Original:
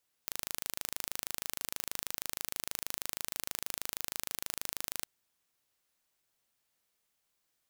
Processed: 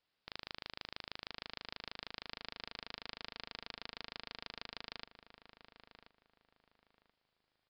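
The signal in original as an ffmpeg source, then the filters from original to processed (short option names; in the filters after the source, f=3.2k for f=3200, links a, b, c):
-f lavfi -i "aevalsrc='0.398*eq(mod(n,1677),0)':d=4.79:s=44100"
-filter_complex "[0:a]aresample=11025,volume=26dB,asoftclip=hard,volume=-26dB,aresample=44100,asplit=2[a][b];[b]adelay=1031,lowpass=f=1.9k:p=1,volume=-9.5dB,asplit=2[c][d];[d]adelay=1031,lowpass=f=1.9k:p=1,volume=0.28,asplit=2[e][f];[f]adelay=1031,lowpass=f=1.9k:p=1,volume=0.28[g];[a][c][e][g]amix=inputs=4:normalize=0"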